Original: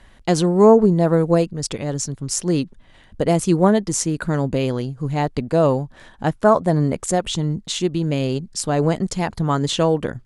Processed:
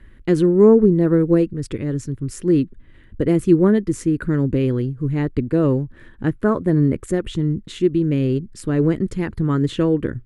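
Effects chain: FFT filter 120 Hz 0 dB, 170 Hz -6 dB, 340 Hz +1 dB, 500 Hz -8 dB, 730 Hz -21 dB, 1.3 kHz -9 dB, 1.8 kHz -6 dB, 5.9 kHz -22 dB, 13 kHz -11 dB; trim +5 dB

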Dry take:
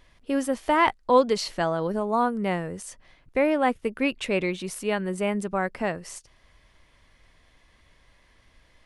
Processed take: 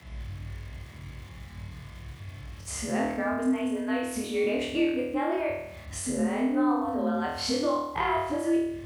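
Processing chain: reverse the whole clip; tone controls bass +9 dB, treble -4 dB; compression 5:1, threshold -36 dBFS, peak gain reduction 20.5 dB; on a send: flutter echo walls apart 4.3 m, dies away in 0.83 s; on the sum: small samples zeroed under -56 dBFS; frequency shift +57 Hz; trim +5.5 dB

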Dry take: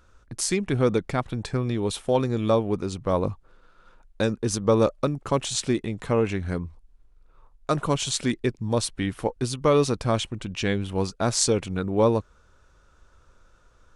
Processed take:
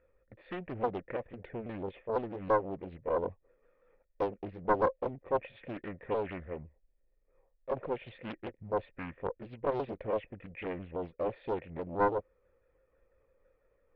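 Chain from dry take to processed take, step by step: sawtooth pitch modulation -3 st, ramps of 166 ms; in parallel at -2 dB: compressor with a negative ratio -27 dBFS, ratio -1; on the sum: cascade formant filter e; loudspeaker Doppler distortion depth 0.72 ms; trim -2 dB

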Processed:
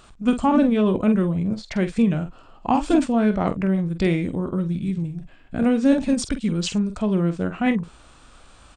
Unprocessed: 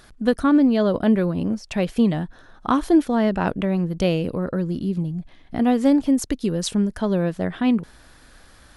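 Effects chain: doubling 47 ms -10 dB; formant shift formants -4 st

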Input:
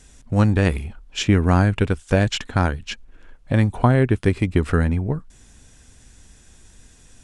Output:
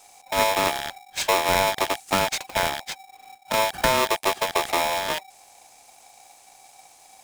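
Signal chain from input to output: rattle on loud lows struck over -31 dBFS, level -14 dBFS; treble shelf 5.1 kHz +10.5 dB; polarity switched at an audio rate 770 Hz; trim -5.5 dB

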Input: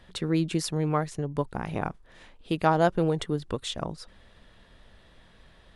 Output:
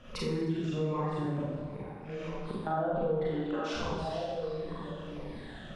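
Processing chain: drifting ripple filter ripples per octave 0.88, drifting -1.4 Hz, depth 14 dB; treble shelf 3.3 kHz -6 dB; on a send: repeats whose band climbs or falls 445 ms, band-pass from 3.6 kHz, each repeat -1.4 oct, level -8 dB; 1.39–2.67 s: on the sum: inverted gate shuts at -19 dBFS, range -27 dB; peak limiter -17.5 dBFS, peak gain reduction 9.5 dB; low-pass that closes with the level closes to 660 Hz, closed at -20 dBFS; 3.26–3.73 s: steep high-pass 270 Hz; Schroeder reverb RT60 1.2 s, combs from 30 ms, DRR -8 dB; compression 2:1, threshold -38 dBFS, peak gain reduction 13.5 dB

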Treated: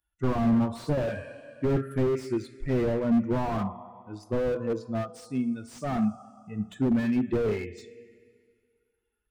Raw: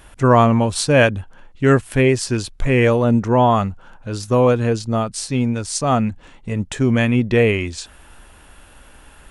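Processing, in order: expander on every frequency bin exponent 2; three-band isolator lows -14 dB, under 170 Hz, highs -12 dB, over 2.1 kHz; two-slope reverb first 0.33 s, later 2.1 s, from -17 dB, DRR 10 dB; slew-rate limiter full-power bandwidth 26 Hz

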